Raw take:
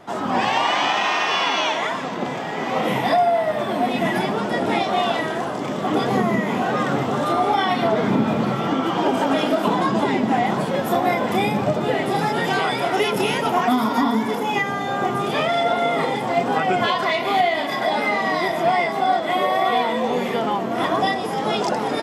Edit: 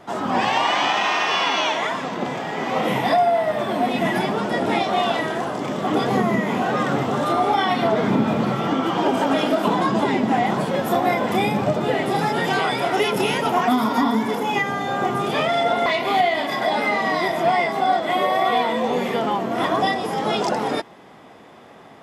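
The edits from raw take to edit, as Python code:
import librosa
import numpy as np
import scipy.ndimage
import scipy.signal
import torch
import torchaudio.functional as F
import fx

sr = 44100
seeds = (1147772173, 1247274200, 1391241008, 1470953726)

y = fx.edit(x, sr, fx.cut(start_s=15.86, length_s=1.2), tone=tone)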